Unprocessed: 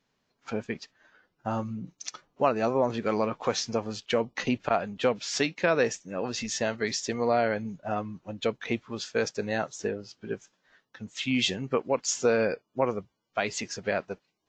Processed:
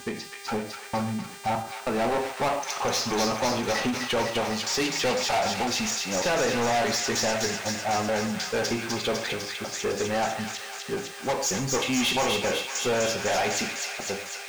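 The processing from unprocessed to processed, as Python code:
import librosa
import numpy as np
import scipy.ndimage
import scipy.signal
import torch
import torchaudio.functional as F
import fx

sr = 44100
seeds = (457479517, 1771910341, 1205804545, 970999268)

p1 = fx.block_reorder(x, sr, ms=311.0, group=3)
p2 = fx.peak_eq(p1, sr, hz=820.0, db=11.5, octaves=0.29)
p3 = fx.quant_dither(p2, sr, seeds[0], bits=8, dither='triangular')
p4 = p2 + F.gain(torch.from_numpy(p3), -10.5).numpy()
p5 = fx.rev_gated(p4, sr, seeds[1], gate_ms=180, shape='falling', drr_db=6.0)
p6 = 10.0 ** (-17.5 / 20.0) * np.tanh(p5 / 10.0 ** (-17.5 / 20.0))
p7 = fx.leveller(p6, sr, passes=2)
p8 = p7 + fx.echo_wet_highpass(p7, sr, ms=251, feedback_pct=74, hz=1500.0, wet_db=-3.0, dry=0)
p9 = fx.dmg_buzz(p8, sr, base_hz=400.0, harmonics=24, level_db=-42.0, tilt_db=-2, odd_only=False)
p10 = fx.end_taper(p9, sr, db_per_s=110.0)
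y = F.gain(torch.from_numpy(p10), -3.5).numpy()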